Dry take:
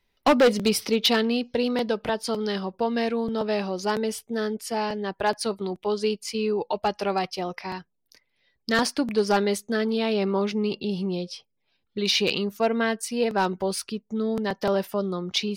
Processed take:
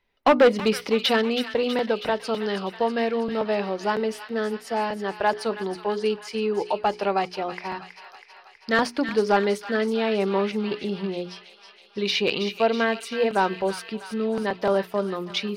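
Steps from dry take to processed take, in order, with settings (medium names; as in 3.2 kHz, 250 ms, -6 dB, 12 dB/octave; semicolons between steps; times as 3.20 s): tone controls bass -5 dB, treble -12 dB; hum notches 60/120/180/240/300/360/420 Hz; on a send: feedback echo behind a high-pass 323 ms, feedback 65%, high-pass 1.5 kHz, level -8.5 dB; on the sum: trim +2.5 dB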